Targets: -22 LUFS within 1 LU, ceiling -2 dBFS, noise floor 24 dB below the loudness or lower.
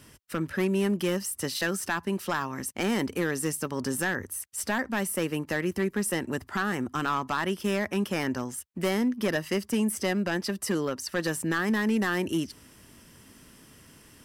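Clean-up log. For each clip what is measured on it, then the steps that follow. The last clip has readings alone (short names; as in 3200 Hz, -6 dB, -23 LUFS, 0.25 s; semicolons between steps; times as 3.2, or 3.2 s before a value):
clipped 1.3%; flat tops at -20.0 dBFS; loudness -29.0 LUFS; peak -20.0 dBFS; loudness target -22.0 LUFS
-> clip repair -20 dBFS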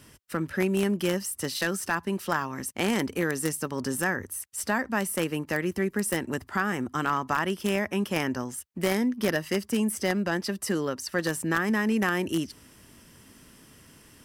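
clipped 0.0%; loudness -28.5 LUFS; peak -11.0 dBFS; loudness target -22.0 LUFS
-> gain +6.5 dB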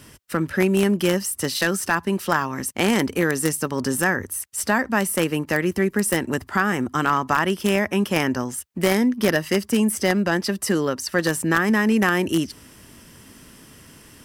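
loudness -22.0 LUFS; peak -4.5 dBFS; noise floor -48 dBFS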